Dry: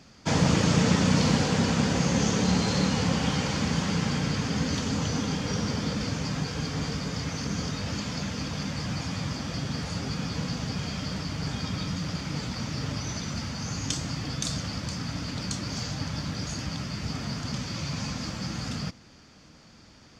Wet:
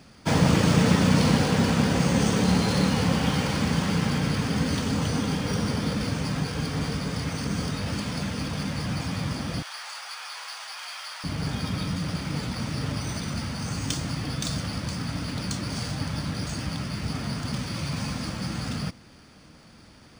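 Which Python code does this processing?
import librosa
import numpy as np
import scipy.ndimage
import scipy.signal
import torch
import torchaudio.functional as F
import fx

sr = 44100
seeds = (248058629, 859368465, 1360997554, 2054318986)

y = fx.cheby2_highpass(x, sr, hz=320.0, order=4, stop_db=50, at=(9.62, 11.24))
y = np.interp(np.arange(len(y)), np.arange(len(y))[::3], y[::3])
y = F.gain(torch.from_numpy(y), 2.5).numpy()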